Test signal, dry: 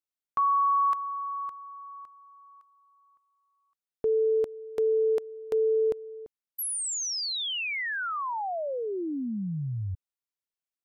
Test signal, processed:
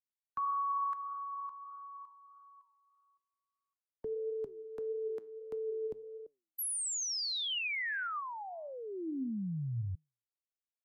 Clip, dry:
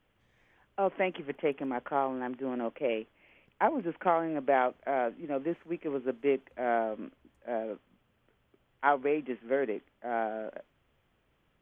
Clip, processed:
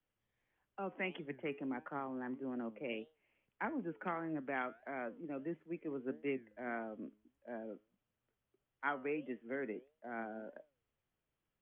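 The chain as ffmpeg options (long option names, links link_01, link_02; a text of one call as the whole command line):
ffmpeg -i in.wav -filter_complex "[0:a]afftdn=noise_reduction=13:noise_floor=-45,acrossover=split=220|310|1200[link_01][link_02][link_03][link_04];[link_03]acompressor=threshold=-42dB:ratio=8:attack=0.35:release=120:knee=1:detection=rms[link_05];[link_01][link_02][link_05][link_04]amix=inputs=4:normalize=0,flanger=delay=6.3:depth=3.2:regen=87:speed=1.6:shape=sinusoidal" out.wav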